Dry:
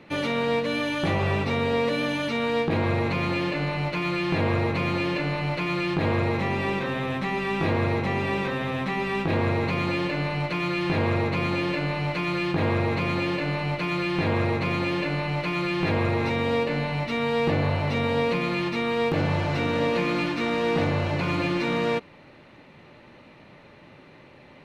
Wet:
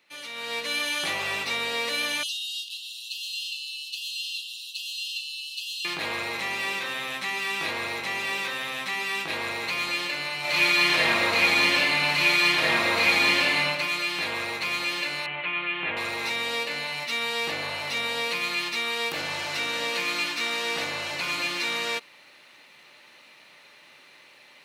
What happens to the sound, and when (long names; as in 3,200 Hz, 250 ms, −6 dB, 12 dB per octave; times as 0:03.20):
0:02.23–0:05.85: linear-phase brick-wall high-pass 2,600 Hz
0:10.40–0:13.59: thrown reverb, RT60 1.6 s, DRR −7.5 dB
0:15.26–0:15.97: Butterworth low-pass 3,200 Hz 48 dB per octave
whole clip: first difference; automatic gain control gain up to 13 dB